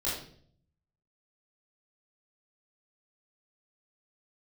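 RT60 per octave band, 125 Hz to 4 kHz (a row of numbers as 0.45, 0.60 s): 1.1, 0.80, 0.65, 0.45, 0.45, 0.50 s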